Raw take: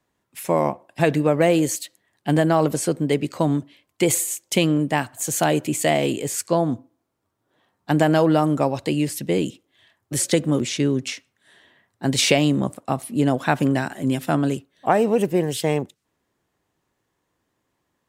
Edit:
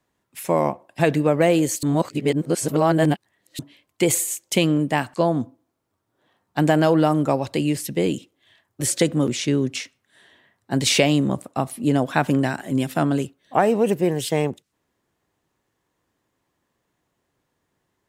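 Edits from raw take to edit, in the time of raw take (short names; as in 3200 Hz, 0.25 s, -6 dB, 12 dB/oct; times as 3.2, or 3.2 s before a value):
1.83–3.59 reverse
5.14–6.46 cut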